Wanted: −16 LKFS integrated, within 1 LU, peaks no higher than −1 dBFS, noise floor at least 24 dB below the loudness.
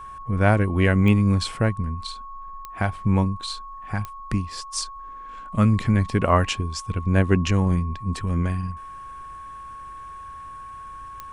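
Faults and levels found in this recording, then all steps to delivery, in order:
number of clicks 4; interfering tone 1,100 Hz; level of the tone −36 dBFS; integrated loudness −23.0 LKFS; sample peak −5.0 dBFS; target loudness −16.0 LKFS
→ click removal
notch filter 1,100 Hz, Q 30
level +7 dB
brickwall limiter −1 dBFS

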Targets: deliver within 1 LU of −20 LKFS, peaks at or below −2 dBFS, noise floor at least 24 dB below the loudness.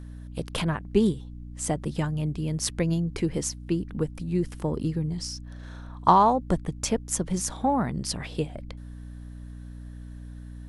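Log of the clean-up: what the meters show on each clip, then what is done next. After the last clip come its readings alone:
mains hum 60 Hz; hum harmonics up to 300 Hz; level of the hum −38 dBFS; integrated loudness −27.0 LKFS; sample peak −4.5 dBFS; target loudness −20.0 LKFS
→ hum removal 60 Hz, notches 5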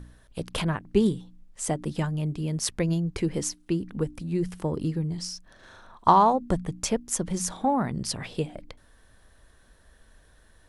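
mains hum none found; integrated loudness −27.5 LKFS; sample peak −4.5 dBFS; target loudness −20.0 LKFS
→ level +7.5 dB
brickwall limiter −2 dBFS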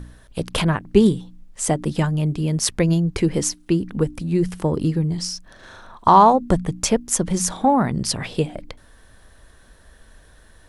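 integrated loudness −20.0 LKFS; sample peak −2.0 dBFS; background noise floor −51 dBFS

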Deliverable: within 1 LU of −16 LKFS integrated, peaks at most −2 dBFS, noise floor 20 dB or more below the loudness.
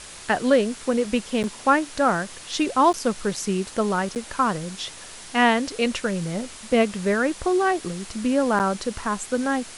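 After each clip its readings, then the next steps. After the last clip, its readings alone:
number of dropouts 4; longest dropout 8.7 ms; background noise floor −41 dBFS; target noise floor −44 dBFS; integrated loudness −23.5 LKFS; sample peak −6.0 dBFS; target loudness −16.0 LKFS
→ repair the gap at 0:01.43/0:02.93/0:04.15/0:08.59, 8.7 ms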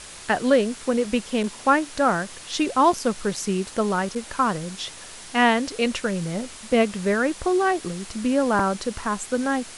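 number of dropouts 0; background noise floor −41 dBFS; target noise floor −44 dBFS
→ noise reduction from a noise print 6 dB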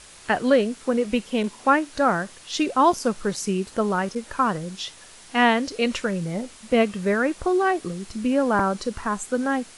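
background noise floor −47 dBFS; integrated loudness −23.5 LKFS; sample peak −6.0 dBFS; target loudness −16.0 LKFS
→ level +7.5 dB
brickwall limiter −2 dBFS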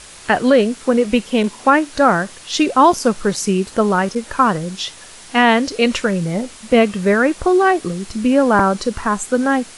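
integrated loudness −16.5 LKFS; sample peak −2.0 dBFS; background noise floor −39 dBFS

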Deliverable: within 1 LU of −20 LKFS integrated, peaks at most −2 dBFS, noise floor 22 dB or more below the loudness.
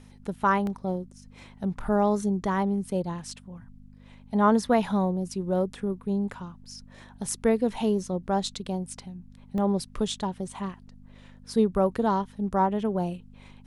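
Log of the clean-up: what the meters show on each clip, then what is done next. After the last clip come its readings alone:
number of dropouts 2; longest dropout 1.3 ms; mains hum 50 Hz; hum harmonics up to 250 Hz; level of the hum −49 dBFS; integrated loudness −27.5 LKFS; sample peak −9.0 dBFS; target loudness −20.0 LKFS
→ repair the gap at 0:00.67/0:09.58, 1.3 ms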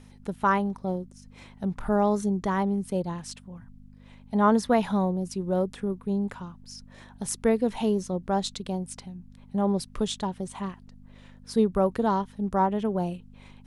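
number of dropouts 0; mains hum 50 Hz; hum harmonics up to 250 Hz; level of the hum −49 dBFS
→ hum removal 50 Hz, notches 5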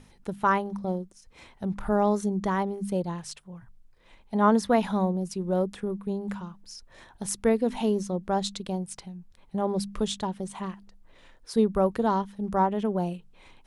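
mains hum none found; integrated loudness −28.0 LKFS; sample peak −9.0 dBFS; target loudness −20.0 LKFS
→ level +8 dB
brickwall limiter −2 dBFS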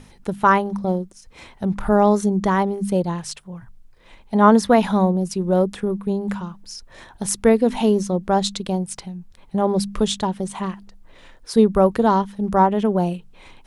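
integrated loudness −20.0 LKFS; sample peak −2.0 dBFS; background noise floor −49 dBFS

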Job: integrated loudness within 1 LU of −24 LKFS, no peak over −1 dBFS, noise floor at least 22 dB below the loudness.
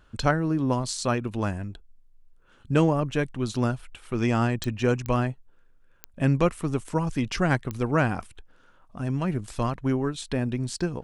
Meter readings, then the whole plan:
number of clicks 4; integrated loudness −26.5 LKFS; sample peak −7.5 dBFS; target loudness −24.0 LKFS
→ click removal
level +2.5 dB

